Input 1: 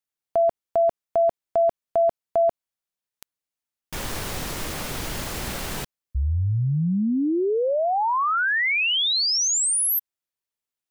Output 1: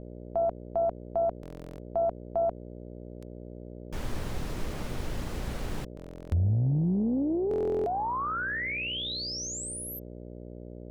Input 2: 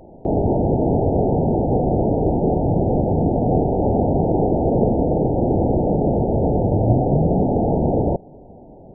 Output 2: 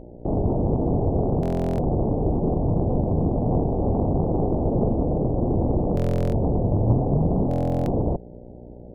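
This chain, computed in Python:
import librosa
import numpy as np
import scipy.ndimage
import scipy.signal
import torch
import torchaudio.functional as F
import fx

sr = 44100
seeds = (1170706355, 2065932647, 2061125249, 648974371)

y = fx.dmg_buzz(x, sr, base_hz=60.0, harmonics=10, level_db=-39.0, tilt_db=0, odd_only=False)
y = fx.tilt_eq(y, sr, slope=-2.0)
y = fx.buffer_glitch(y, sr, at_s=(1.41, 5.95, 7.49), block=1024, repeats=15)
y = fx.doppler_dist(y, sr, depth_ms=0.53)
y = F.gain(torch.from_numpy(y), -8.5).numpy()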